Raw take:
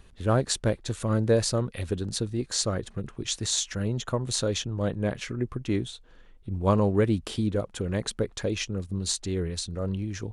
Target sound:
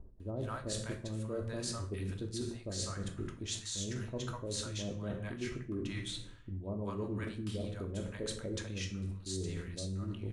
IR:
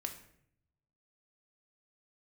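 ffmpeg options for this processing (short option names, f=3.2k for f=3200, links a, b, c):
-filter_complex "[0:a]acrossover=split=790[a][b];[b]adelay=200[c];[a][c]amix=inputs=2:normalize=0[d];[1:a]atrim=start_sample=2205[e];[d][e]afir=irnorm=-1:irlink=0,areverse,acompressor=threshold=-39dB:ratio=6,areverse,volume=2.5dB"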